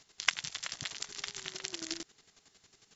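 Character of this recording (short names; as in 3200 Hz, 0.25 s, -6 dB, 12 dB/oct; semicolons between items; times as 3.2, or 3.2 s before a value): chopped level 11 Hz, depth 65%, duty 30%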